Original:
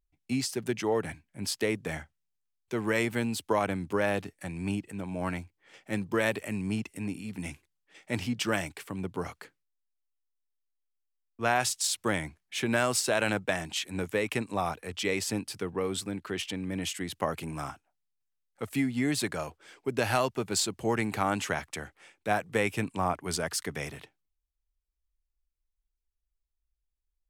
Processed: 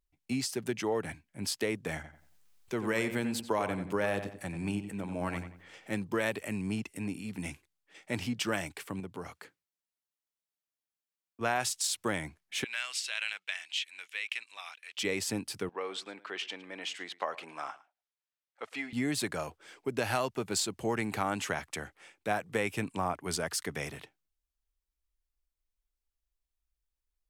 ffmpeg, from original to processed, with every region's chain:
-filter_complex "[0:a]asettb=1/sr,asplit=3[a][b][c];[a]atrim=end=1.954[d];[b]atrim=start=1.95:end=5.91,asetpts=PTS-STARTPTS,afade=t=in:d=0.004:c=qsin,afade=t=out:st=3.956:d=0.004:c=qsin,acompressor=mode=upward:threshold=-47dB:ratio=2.5:attack=3.2:release=140:knee=2.83:detection=peak,asplit=2[e][f];[f]adelay=90,lowpass=f=2.8k:p=1,volume=-9.5dB,asplit=2[g][h];[h]adelay=90,lowpass=f=2.8k:p=1,volume=0.32,asplit=2[i][j];[j]adelay=90,lowpass=f=2.8k:p=1,volume=0.32,asplit=2[k][l];[l]adelay=90,lowpass=f=2.8k:p=1,volume=0.32[m];[e][g][i][k][m]amix=inputs=5:normalize=0,atrim=end_sample=174636[n];[c]atrim=start=5.906[o];[d][n]acrossfade=d=0.004:c1=hsin:c2=qsin[p];[p][o]acrossfade=d=0.004:c1=qsin:c2=hsin,asettb=1/sr,asplit=3[q][r][s];[q]atrim=end=9.004[t];[r]atrim=start=9:end=11.41,asetpts=PTS-STARTPTS,afade=t=in:d=0.004:c=qsin,afade=t=out:st=2.406:d=0.004:c=qsin,highpass=49,acompressor=threshold=-47dB:ratio=1.5:attack=3.2:release=140:knee=1:detection=peak[u];[s]atrim=start=11.406[v];[t][u]acrossfade=d=0.004:c1=hsin:c2=qsin[w];[w][v]acrossfade=d=0.004:c1=qsin:c2=hsin,asettb=1/sr,asplit=3[x][y][z];[x]atrim=end=12.644[aa];[y]atrim=start=12.64:end=14.98,asetpts=PTS-STARTPTS,afade=t=in:d=0.004:c=qsin,afade=t=out:st=2.336:d=0.004:c=qsin,highpass=f=2.7k:t=q:w=1.7,aemphasis=mode=reproduction:type=50fm[ab];[z]atrim=start=14.976[ac];[aa][ab]acrossfade=d=0.004:c1=hsin:c2=qsin[ad];[ad][ac]acrossfade=d=0.004:c1=qsin:c2=hsin,asettb=1/sr,asplit=3[ae][af][ag];[ae]atrim=end=15.694[ah];[af]atrim=start=15.69:end=18.93,asetpts=PTS-STARTPTS,afade=t=in:d=0.004:c=qsin,afade=t=out:st=3.236:d=0.004:c=qsin,highpass=590,lowpass=4.4k,aecho=1:1:109:0.1,atrim=end_sample=142884[ai];[ag]atrim=start=18.926[aj];[ah][ai]acrossfade=d=0.004:c1=hsin:c2=qsin[ak];[ak][aj]acrossfade=d=0.004:c1=qsin:c2=hsin,lowshelf=f=140:g=-3,acompressor=threshold=-32dB:ratio=1.5"

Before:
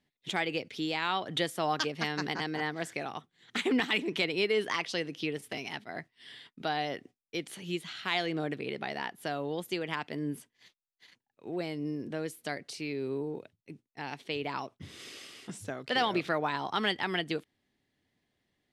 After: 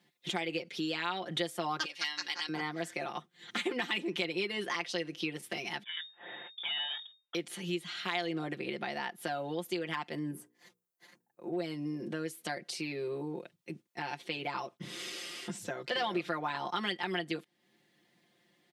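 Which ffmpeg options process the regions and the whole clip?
-filter_complex "[0:a]asettb=1/sr,asplit=3[a][b][c];[a]atrim=end=1.854[d];[b]atrim=start=1.85:end=2.49,asetpts=PTS-STARTPTS,afade=t=in:d=0.004:c=qsin,afade=t=out:st=0.636:d=0.004:c=qsin,bandpass=f=3.7k:t=q:w=0.64,highshelf=f=3.8k:g=9,aecho=1:1:3.6:0.41,atrim=end_sample=28224[e];[c]atrim=start=2.486[f];[d][e]acrossfade=d=0.004:c1=hsin:c2=qsin[g];[g][f]acrossfade=d=0.004:c1=qsin:c2=hsin,asettb=1/sr,asplit=3[h][i][j];[h]atrim=end=5.834[k];[i]atrim=start=5.83:end=7.35,asetpts=PTS-STARTPTS,afade=t=in:d=0.004:c=qsin,afade=t=out:st=1.516:d=0.004:c=qsin,aeval=exprs='if(lt(val(0),0),0.447*val(0),val(0))':c=same,lowpass=f=3.1k:t=q:w=0.5098,lowpass=f=3.1k:t=q:w=0.6013,lowpass=f=3.1k:t=q:w=0.9,lowpass=f=3.1k:t=q:w=2.563,afreqshift=-3700[l];[j]atrim=start=7.346[m];[k][l]acrossfade=d=0.004:c1=hsin:c2=qsin[n];[n][m]acrossfade=d=0.004:c1=qsin:c2=hsin,asettb=1/sr,asplit=3[o][p][q];[o]atrim=end=10.314[r];[p]atrim=start=10.31:end=11.53,asetpts=PTS-STARTPTS,afade=t=in:d=0.004:c=qsin,afade=t=out:st=1.216:d=0.004:c=qsin,equalizer=f=3.3k:t=o:w=1.9:g=-15,bandreject=f=60:t=h:w=6,bandreject=f=120:t=h:w=6,bandreject=f=180:t=h:w=6,bandreject=f=240:t=h:w=6,bandreject=f=300:t=h:w=6,bandreject=f=360:t=h:w=6,bandreject=f=420:t=h:w=6,bandreject=f=480:t=h:w=6[s];[q]atrim=start=11.526[t];[r][s]acrossfade=d=0.004:c1=hsin:c2=qsin[u];[u][t]acrossfade=d=0.004:c1=qsin:c2=hsin,asettb=1/sr,asplit=3[v][w][x];[v]atrim=end=15.524[y];[w]atrim=start=15.52:end=16.03,asetpts=PTS-STARTPTS,afade=t=in:d=0.004:c=qsin,afade=t=out:st=0.506:d=0.004:c=qsin,equalizer=f=10k:w=6.8:g=-11.5,bandreject=f=1.2k:w=22[z];[x]atrim=start=16.026[aa];[y][z]acrossfade=d=0.004:c1=hsin:c2=qsin[ab];[ab][aa]acrossfade=d=0.004:c1=qsin:c2=hsin,highpass=170,aecho=1:1:5.7:0.95,acompressor=threshold=-48dB:ratio=2,volume=6.5dB"

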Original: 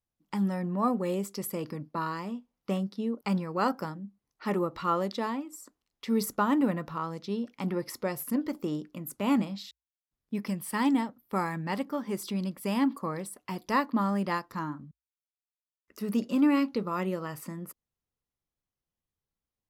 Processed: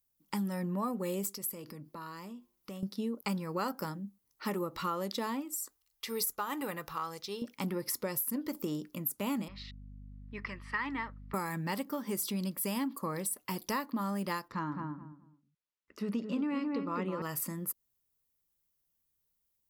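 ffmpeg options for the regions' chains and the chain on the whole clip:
-filter_complex "[0:a]asettb=1/sr,asplit=3[a][b][c];[a]atrim=end=1.334[d];[b]atrim=start=1.33:end=2.83,asetpts=PTS-STARTPTS,afade=t=in:d=0.004:c=qsin,afade=t=out:st=1.496:d=0.004:c=qsin,bandreject=f=351.1:t=h:w=4,bandreject=f=702.2:t=h:w=4,bandreject=f=1.0533k:t=h:w=4,acompressor=threshold=-45dB:ratio=3:attack=3.2:release=140:knee=1:detection=peak[e];[c]atrim=start=2.826[f];[d][e]acrossfade=d=0.004:c1=hsin:c2=qsin[g];[g][f]acrossfade=d=0.004:c1=qsin:c2=hsin,asettb=1/sr,asplit=3[h][i][j];[h]atrim=end=5.544[k];[i]atrim=start=5.54:end=7.42,asetpts=PTS-STARTPTS,afade=t=in:d=0.004:c=qsin,afade=t=out:st=1.876:d=0.004:c=qsin,equalizer=f=240:t=o:w=1.7:g=-12.5,aecho=1:1:2.5:0.31,atrim=end_sample=82908[l];[j]atrim=start=7.416[m];[k][l]acrossfade=d=0.004:c1=hsin:c2=qsin[n];[n][m]acrossfade=d=0.004:c1=qsin:c2=hsin,asettb=1/sr,asplit=3[o][p][q];[o]atrim=end=9.484[r];[p]atrim=start=9.48:end=11.34,asetpts=PTS-STARTPTS,afade=t=in:d=0.004:c=qsin,afade=t=out:st=1.856:d=0.004:c=qsin,highpass=490,equalizer=f=530:t=q:w=4:g=-6,equalizer=f=750:t=q:w=4:g=-9,equalizer=f=1.2k:t=q:w=4:g=6,equalizer=f=1.9k:t=q:w=4:g=8,equalizer=f=3.4k:t=q:w=4:g=-8,lowpass=f=3.7k:w=0.5412,lowpass=f=3.7k:w=1.3066,aeval=exprs='val(0)+0.00447*(sin(2*PI*50*n/s)+sin(2*PI*2*50*n/s)/2+sin(2*PI*3*50*n/s)/3+sin(2*PI*4*50*n/s)/4+sin(2*PI*5*50*n/s)/5)':c=same[s];[q]atrim=start=11.336[t];[r][s]acrossfade=d=0.004:c1=hsin:c2=qsin[u];[u][t]acrossfade=d=0.004:c1=qsin:c2=hsin,asettb=1/sr,asplit=3[v][w][x];[v]atrim=end=14.484[y];[w]atrim=start=14.48:end=17.22,asetpts=PTS-STARTPTS,afade=t=in:d=0.004:c=qsin,afade=t=out:st=2.736:d=0.004:c=qsin,lowpass=3.3k,asplit=2[z][aa];[aa]adelay=212,lowpass=f=1.1k:p=1,volume=-4dB,asplit=2[ab][ac];[ac]adelay=212,lowpass=f=1.1k:p=1,volume=0.24,asplit=2[ad][ae];[ae]adelay=212,lowpass=f=1.1k:p=1,volume=0.24[af];[z][ab][ad][af]amix=inputs=4:normalize=0,atrim=end_sample=120834[ag];[x]atrim=start=17.216[ah];[y][ag]acrossfade=d=0.004:c1=hsin:c2=qsin[ai];[ai][ah]acrossfade=d=0.004:c1=qsin:c2=hsin,aemphasis=mode=production:type=50fm,bandreject=f=710:w=12,acompressor=threshold=-31dB:ratio=6"

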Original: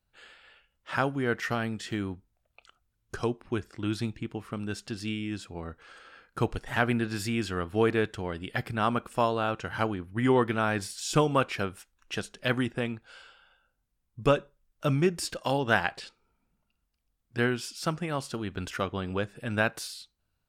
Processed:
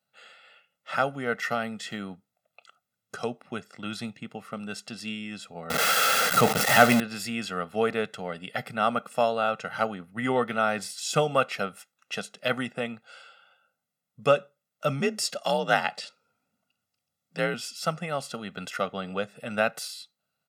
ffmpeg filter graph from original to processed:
-filter_complex "[0:a]asettb=1/sr,asplit=3[a][b][c];[a]atrim=end=5.704[d];[b]atrim=start=5.7:end=7,asetpts=PTS-STARTPTS,afade=t=in:d=0.004:c=qsin,afade=t=out:st=1.296:d=0.004:c=qsin,aeval=exprs='val(0)+0.5*0.0562*sgn(val(0))':c=same,highshelf=f=8.2k:g=4,acontrast=36[e];[c]atrim=start=6.996[f];[d][e]acrossfade=d=0.004:c1=hsin:c2=qsin[g];[g][f]acrossfade=d=0.004:c1=qsin:c2=hsin,asettb=1/sr,asplit=3[h][i][j];[h]atrim=end=15.004[k];[i]atrim=start=15:end=17.54,asetpts=PTS-STARTPTS,afade=t=in:d=0.004:c=qsin,afade=t=out:st=2.536:d=0.004:c=qsin,equalizer=f=5.8k:w=0.81:g=3.5,afreqshift=47[l];[j]atrim=start=17.536[m];[k][l]acrossfade=d=0.004:c1=hsin:c2=qsin[n];[n][m]acrossfade=d=0.004:c1=qsin:c2=hsin,highpass=f=170:w=0.5412,highpass=f=170:w=1.3066,aecho=1:1:1.5:0.77"

